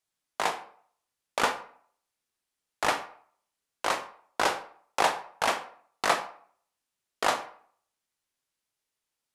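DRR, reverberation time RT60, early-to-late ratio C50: 8.0 dB, 0.55 s, 11.5 dB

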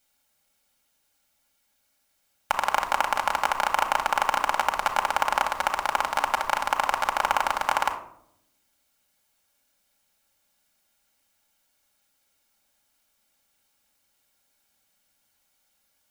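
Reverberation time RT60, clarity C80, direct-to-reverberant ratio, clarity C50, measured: 0.70 s, 14.5 dB, 2.0 dB, 10.5 dB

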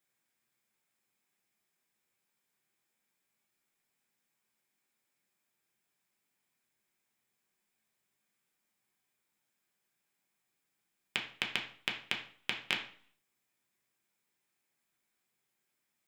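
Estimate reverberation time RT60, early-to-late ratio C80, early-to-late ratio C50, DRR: 0.50 s, 12.5 dB, 9.0 dB, 0.0 dB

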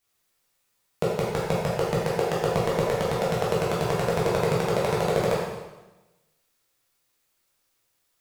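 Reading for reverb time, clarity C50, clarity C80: 1.1 s, -0.5 dB, 2.5 dB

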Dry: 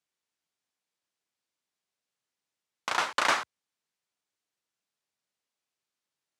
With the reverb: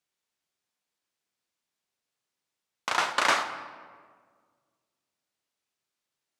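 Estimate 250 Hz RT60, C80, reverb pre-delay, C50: 2.0 s, 11.5 dB, 22 ms, 10.0 dB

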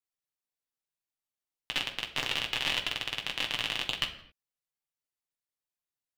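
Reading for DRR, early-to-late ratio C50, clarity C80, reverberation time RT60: 1.0 dB, 11.5 dB, 14.0 dB, no single decay rate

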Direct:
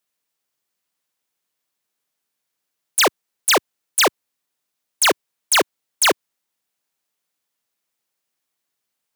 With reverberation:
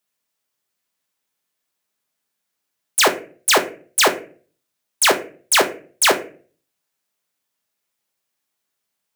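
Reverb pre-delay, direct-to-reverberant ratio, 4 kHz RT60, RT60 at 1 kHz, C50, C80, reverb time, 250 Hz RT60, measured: 5 ms, 4.5 dB, 0.25 s, 0.35 s, 13.0 dB, 17.5 dB, 0.40 s, 0.55 s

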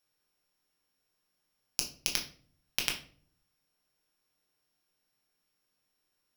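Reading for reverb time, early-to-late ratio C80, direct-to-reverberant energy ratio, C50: 0.50 s, 15.0 dB, 0.0 dB, 10.0 dB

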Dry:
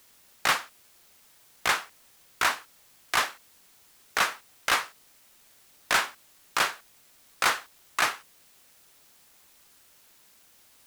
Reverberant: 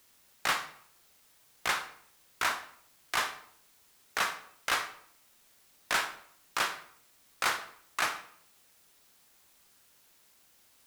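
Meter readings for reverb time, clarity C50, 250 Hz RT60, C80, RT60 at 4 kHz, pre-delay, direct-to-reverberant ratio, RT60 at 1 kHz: 0.65 s, 11.0 dB, 0.70 s, 14.5 dB, 0.45 s, 26 ms, 8.5 dB, 0.60 s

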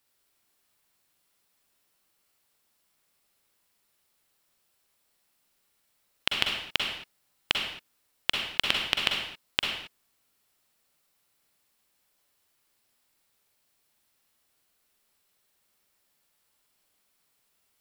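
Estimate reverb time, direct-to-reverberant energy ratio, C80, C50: no single decay rate, 0.0 dB, 5.0 dB, 1.5 dB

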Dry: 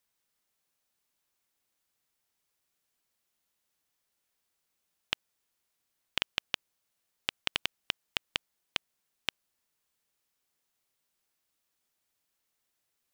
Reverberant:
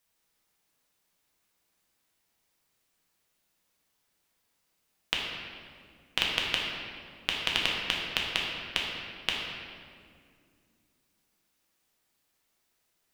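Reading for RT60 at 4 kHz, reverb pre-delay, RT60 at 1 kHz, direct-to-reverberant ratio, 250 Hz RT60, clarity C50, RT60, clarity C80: 1.4 s, 6 ms, 1.9 s, -3.0 dB, 3.2 s, 0.5 dB, 2.2 s, 2.0 dB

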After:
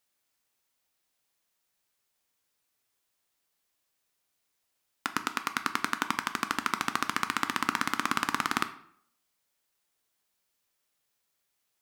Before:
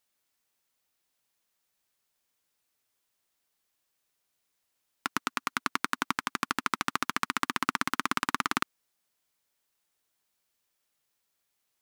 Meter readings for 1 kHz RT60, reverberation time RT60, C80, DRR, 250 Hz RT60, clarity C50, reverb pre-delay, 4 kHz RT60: 0.65 s, 0.65 s, 17.0 dB, 9.0 dB, 0.65 s, 13.5 dB, 9 ms, 0.45 s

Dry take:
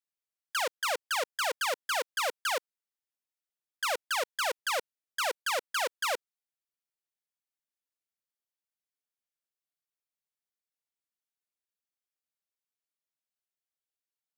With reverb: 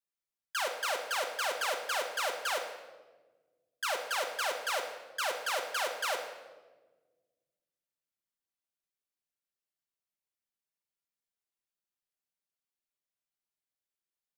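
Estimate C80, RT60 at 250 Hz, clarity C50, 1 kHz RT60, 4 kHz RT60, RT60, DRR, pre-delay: 9.0 dB, 2.2 s, 7.0 dB, 1.1 s, 0.90 s, 1.3 s, 2.0 dB, 5 ms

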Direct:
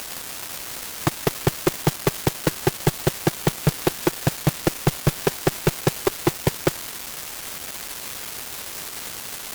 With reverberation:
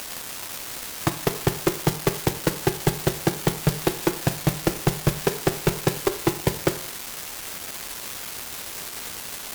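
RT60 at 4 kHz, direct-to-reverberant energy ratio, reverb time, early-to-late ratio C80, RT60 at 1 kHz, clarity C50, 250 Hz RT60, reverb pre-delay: 0.40 s, 9.0 dB, 0.55 s, 17.0 dB, 0.50 s, 14.0 dB, 0.50 s, 10 ms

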